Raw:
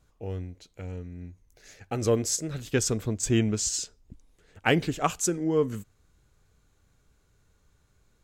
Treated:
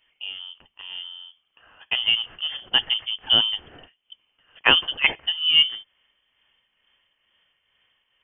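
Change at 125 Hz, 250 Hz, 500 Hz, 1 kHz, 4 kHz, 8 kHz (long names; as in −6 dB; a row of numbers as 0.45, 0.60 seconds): −17.5 dB, −13.5 dB, −10.5 dB, +1.0 dB, +20.0 dB, below −40 dB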